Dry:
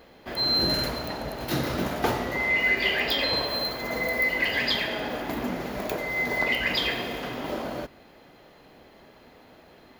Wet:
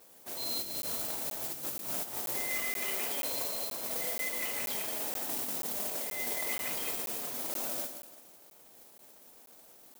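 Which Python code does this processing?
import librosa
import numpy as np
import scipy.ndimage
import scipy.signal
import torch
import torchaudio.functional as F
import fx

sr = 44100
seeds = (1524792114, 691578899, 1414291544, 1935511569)

y = scipy.ndimage.median_filter(x, 25, mode='constant')
y = scipy.signal.sosfilt(scipy.signal.butter(2, 66.0, 'highpass', fs=sr, output='sos'), y)
y = fx.low_shelf(y, sr, hz=100.0, db=7.0)
y = fx.notch(y, sr, hz=2800.0, q=23.0)
y = fx.echo_feedback(y, sr, ms=171, feedback_pct=36, wet_db=-10)
y = fx.over_compress(y, sr, threshold_db=-30.0, ratio=-0.5)
y = scipy.signal.sosfilt(scipy.signal.butter(2, 3800.0, 'lowpass', fs=sr, output='sos'), y)
y = fx.mod_noise(y, sr, seeds[0], snr_db=11)
y = fx.tilt_eq(y, sr, slope=4.0)
y = y + 10.0 ** (-15.0 / 20.0) * np.pad(y, (int(113 * sr / 1000.0), 0))[:len(y)]
y = fx.buffer_crackle(y, sr, first_s=0.82, period_s=0.48, block=512, kind='zero')
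y = F.gain(torch.from_numpy(y), -8.0).numpy()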